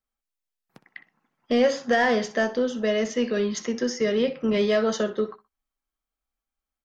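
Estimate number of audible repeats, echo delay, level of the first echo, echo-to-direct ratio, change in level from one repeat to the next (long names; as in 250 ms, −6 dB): 2, 62 ms, −16.0 dB, −16.0 dB, −12.5 dB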